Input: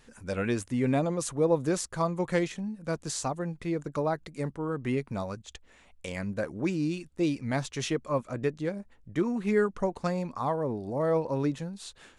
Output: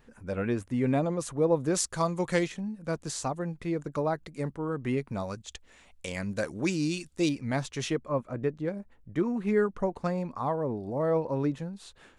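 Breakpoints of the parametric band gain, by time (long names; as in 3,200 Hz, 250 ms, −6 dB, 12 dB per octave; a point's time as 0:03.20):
parametric band 7,100 Hz 2.6 octaves
−11.5 dB
from 0:00.71 −5 dB
from 0:01.75 +6 dB
from 0:02.46 −2 dB
from 0:05.24 +4 dB
from 0:06.31 +10.5 dB
from 0:07.29 −1.5 dB
from 0:07.98 −13 dB
from 0:08.68 −7 dB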